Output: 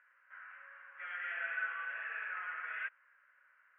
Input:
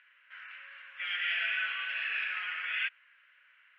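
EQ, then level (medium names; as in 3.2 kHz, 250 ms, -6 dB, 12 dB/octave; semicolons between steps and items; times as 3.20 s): low-pass 1.5 kHz 24 dB/octave; +1.5 dB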